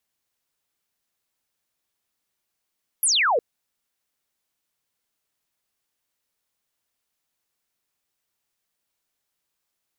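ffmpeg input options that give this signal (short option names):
-f lavfi -i "aevalsrc='0.141*clip(t/0.002,0,1)*clip((0.36-t)/0.002,0,1)*sin(2*PI*12000*0.36/log(430/12000)*(exp(log(430/12000)*t/0.36)-1))':d=0.36:s=44100"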